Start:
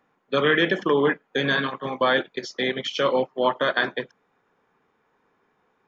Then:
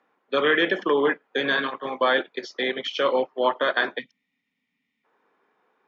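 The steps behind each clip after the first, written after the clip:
gain on a spectral selection 0:03.99–0:05.04, 290–1,800 Hz −24 dB
three-way crossover with the lows and the highs turned down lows −19 dB, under 230 Hz, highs −15 dB, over 5,500 Hz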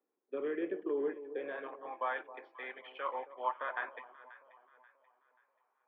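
band-pass filter sweep 360 Hz → 980 Hz, 0:01.02–0:02.16
transistor ladder low-pass 2,900 Hz, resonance 55%
delay that swaps between a low-pass and a high-pass 267 ms, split 960 Hz, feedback 60%, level −13 dB

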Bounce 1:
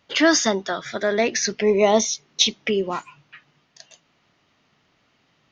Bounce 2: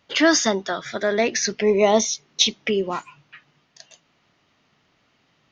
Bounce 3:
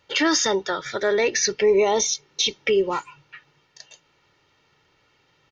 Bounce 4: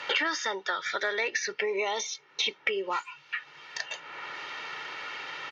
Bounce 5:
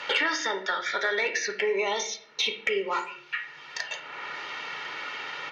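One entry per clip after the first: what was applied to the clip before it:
no processing that can be heard
comb filter 2.2 ms, depth 63%; brickwall limiter −11 dBFS, peak gain reduction 9 dB
resonant band-pass 1,700 Hz, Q 0.88; multiband upward and downward compressor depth 100%; level −2 dB
soft clipping −12.5 dBFS, distortion −29 dB; on a send at −5 dB: convolution reverb RT60 0.60 s, pre-delay 4 ms; on the sum: level +1.5 dB

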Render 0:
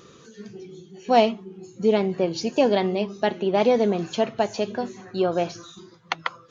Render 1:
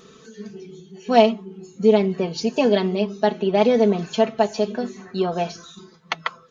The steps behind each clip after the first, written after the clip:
comb filter 4.6 ms, depth 71%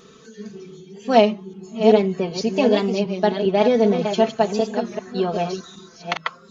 delay that plays each chunk backwards 384 ms, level −7 dB
wow of a warped record 33 1/3 rpm, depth 100 cents

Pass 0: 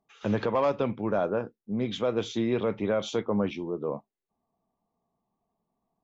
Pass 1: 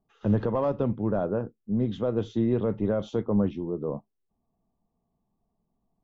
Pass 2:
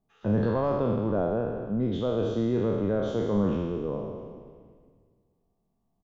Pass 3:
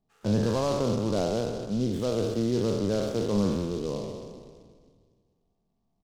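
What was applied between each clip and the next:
spectral tilt −3.5 dB per octave; notch filter 2,300 Hz, Q 5.6; level −4 dB
peak hold with a decay on every bin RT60 1.72 s; echo with shifted repeats 223 ms, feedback 60%, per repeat −120 Hz, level −19 dB; level −3 dB
high-frequency loss of the air 190 metres; short delay modulated by noise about 4,200 Hz, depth 0.048 ms

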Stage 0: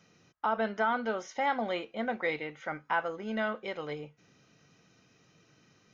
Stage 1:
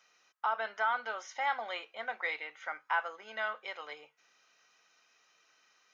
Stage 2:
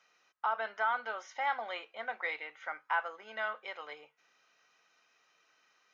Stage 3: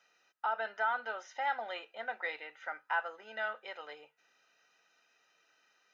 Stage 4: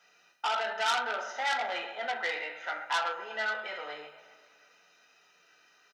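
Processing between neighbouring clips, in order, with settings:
Chebyshev high-pass filter 1,000 Hz, order 2
high-shelf EQ 5,100 Hz −9 dB
notch comb filter 1,100 Hz
repeating echo 128 ms, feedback 45%, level −14.5 dB; convolution reverb, pre-delay 3 ms, DRR −0.5 dB; saturating transformer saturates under 3,700 Hz; level +4.5 dB

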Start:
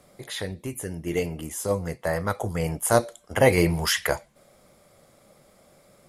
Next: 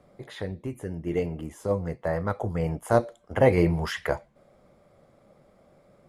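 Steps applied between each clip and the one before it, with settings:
low-pass filter 1,100 Hz 6 dB per octave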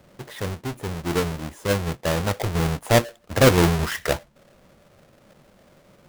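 each half-wave held at its own peak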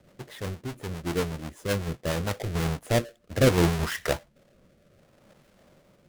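rotating-speaker cabinet horn 8 Hz, later 0.65 Hz, at 0:01.84
level −3 dB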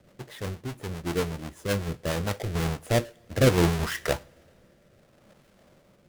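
coupled-rooms reverb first 0.39 s, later 3.4 s, from −20 dB, DRR 18 dB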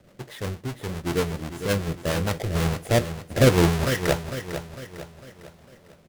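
repeating echo 452 ms, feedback 45%, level −10 dB
level +3 dB

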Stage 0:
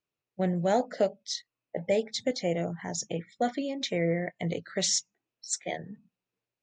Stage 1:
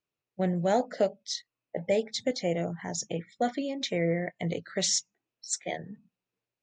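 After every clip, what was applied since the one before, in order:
no processing that can be heard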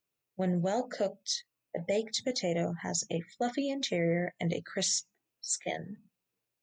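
high-shelf EQ 7,300 Hz +10 dB
brickwall limiter −21 dBFS, peak gain reduction 8.5 dB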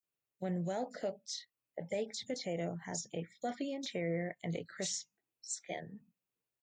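multiband delay without the direct sound highs, lows 30 ms, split 4,900 Hz
level −6.5 dB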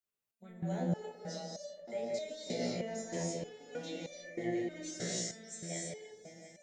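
echo whose low-pass opens from repeat to repeat 183 ms, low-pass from 750 Hz, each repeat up 1 octave, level −6 dB
reverb whose tail is shaped and stops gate 350 ms rising, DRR −4 dB
step-sequenced resonator 3.2 Hz 61–590 Hz
level +5 dB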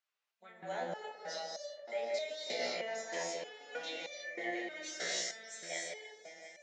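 high-pass filter 910 Hz 12 dB per octave
high-frequency loss of the air 140 metres
level +9.5 dB

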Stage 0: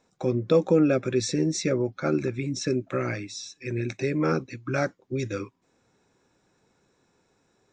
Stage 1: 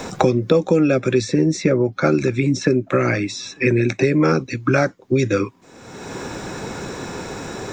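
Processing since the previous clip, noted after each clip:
multiband upward and downward compressor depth 100%
level +8 dB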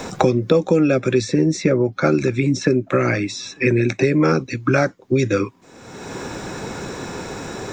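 no processing that can be heard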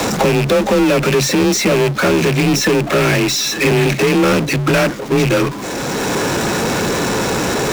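loose part that buzzes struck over −25 dBFS, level −19 dBFS
power curve on the samples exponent 0.35
frequency shifter +27 Hz
level −5 dB

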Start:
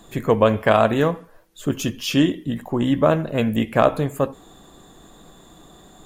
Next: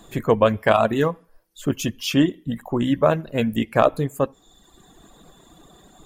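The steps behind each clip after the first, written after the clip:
reverb reduction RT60 1.1 s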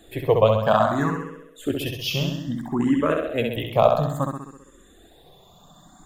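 flutter between parallel walls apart 11.2 metres, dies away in 0.86 s
frequency shifter mixed with the dry sound +0.6 Hz

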